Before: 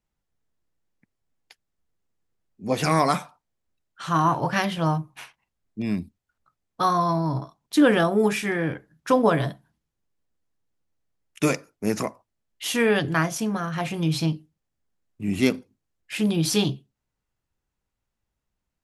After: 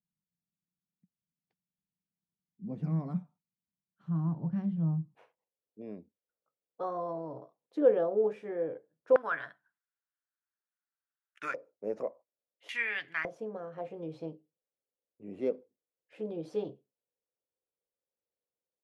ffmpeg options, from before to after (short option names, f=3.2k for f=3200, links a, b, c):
-af "asetnsamples=n=441:p=0,asendcmd='5.15 bandpass f 500;9.16 bandpass f 1500;11.54 bandpass f 530;12.69 bandpass f 2100;13.25 bandpass f 500',bandpass=f=180:t=q:w=5.2:csg=0"